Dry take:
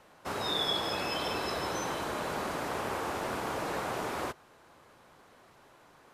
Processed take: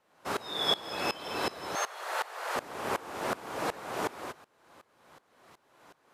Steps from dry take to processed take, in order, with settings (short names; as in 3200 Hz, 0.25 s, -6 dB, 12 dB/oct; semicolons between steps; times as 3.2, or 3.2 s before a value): low shelf 100 Hz -11.5 dB; 1.75–2.56 frequency shift +280 Hz; dB-ramp tremolo swelling 2.7 Hz, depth 21 dB; gain +6.5 dB